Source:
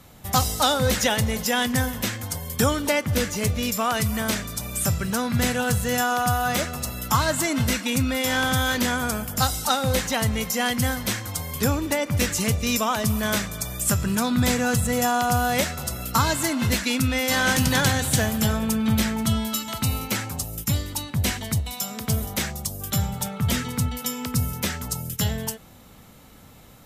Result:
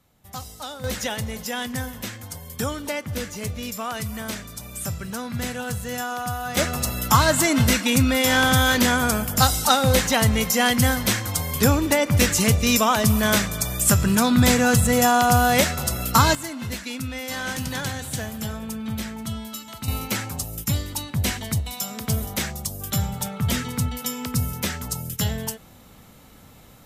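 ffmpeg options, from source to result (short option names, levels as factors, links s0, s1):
-af "asetnsamples=n=441:p=0,asendcmd='0.84 volume volume -6dB;6.57 volume volume 4.5dB;16.35 volume volume -8dB;19.88 volume volume 0dB',volume=0.188"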